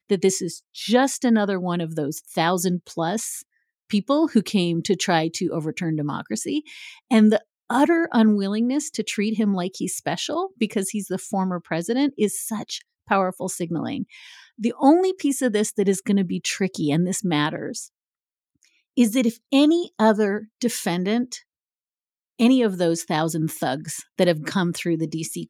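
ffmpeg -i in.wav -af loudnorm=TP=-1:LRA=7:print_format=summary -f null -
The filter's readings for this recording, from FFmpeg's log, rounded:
Input Integrated:    -22.7 LUFS
Input True Peak:      -4.3 dBTP
Input LRA:             3.6 LU
Input Threshold:     -33.0 LUFS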